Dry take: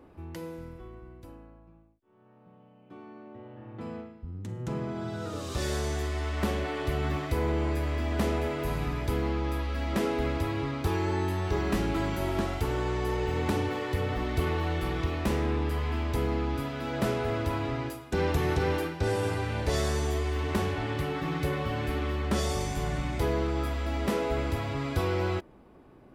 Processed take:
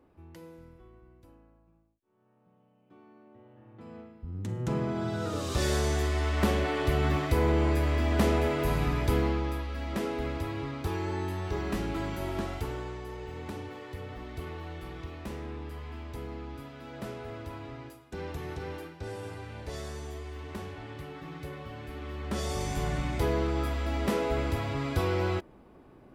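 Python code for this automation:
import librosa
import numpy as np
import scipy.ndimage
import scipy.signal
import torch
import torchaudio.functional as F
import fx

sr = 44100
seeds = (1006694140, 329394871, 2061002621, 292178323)

y = fx.gain(x, sr, db=fx.line((3.85, -9.0), (4.41, 3.0), (9.18, 3.0), (9.67, -4.0), (12.58, -4.0), (13.05, -11.0), (21.89, -11.0), (22.74, 0.0)))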